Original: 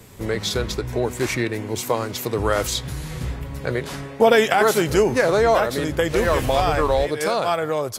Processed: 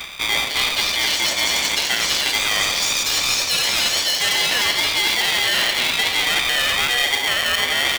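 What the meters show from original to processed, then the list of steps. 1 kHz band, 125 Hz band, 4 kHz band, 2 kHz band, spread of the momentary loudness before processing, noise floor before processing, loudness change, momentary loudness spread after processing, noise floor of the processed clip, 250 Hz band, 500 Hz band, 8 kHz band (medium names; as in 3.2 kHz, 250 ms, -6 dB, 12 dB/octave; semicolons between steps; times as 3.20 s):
-3.5 dB, -13.5 dB, +15.0 dB, +8.0 dB, 11 LU, -34 dBFS, +4.0 dB, 1 LU, -24 dBFS, -11.0 dB, -13.5 dB, +10.0 dB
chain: rattle on loud lows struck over -31 dBFS, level -18 dBFS; frequency inversion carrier 3.1 kHz; sine folder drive 9 dB, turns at -1.5 dBFS; on a send: feedback delay 89 ms, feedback 60%, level -10 dB; on the sum: ever faster or slower copies 350 ms, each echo +5 st, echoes 3; brick-wall FIR band-stop 390–1100 Hz; reverse; compression 8:1, threshold -20 dBFS, peak gain reduction 19 dB; reverse; polarity switched at an audio rate 610 Hz; trim +2.5 dB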